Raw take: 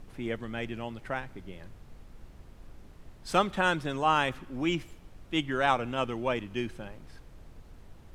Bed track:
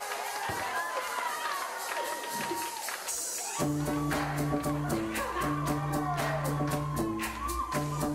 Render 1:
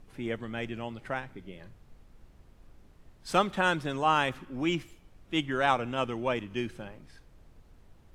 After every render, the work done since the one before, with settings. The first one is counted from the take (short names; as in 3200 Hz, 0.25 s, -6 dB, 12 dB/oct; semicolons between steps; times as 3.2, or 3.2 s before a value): noise print and reduce 6 dB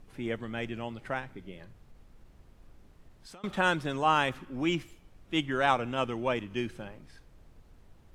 1.64–3.44 compressor 16:1, threshold -46 dBFS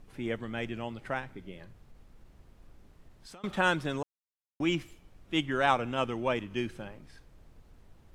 4.03–4.6 mute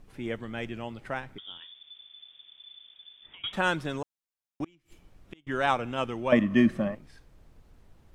1.38–3.53 inverted band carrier 3500 Hz; 4.64–5.47 flipped gate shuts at -27 dBFS, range -32 dB; 6.32–6.95 small resonant body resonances 220/600/1100/1800 Hz, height 18 dB, ringing for 30 ms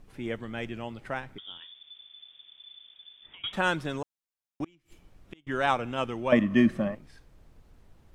nothing audible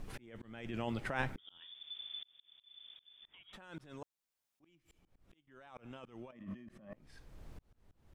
negative-ratio compressor -38 dBFS, ratio -1; auto swell 0.79 s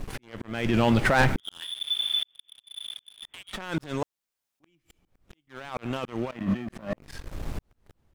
AGC gain up to 8 dB; sample leveller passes 3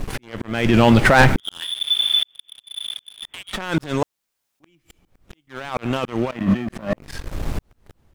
gain +8.5 dB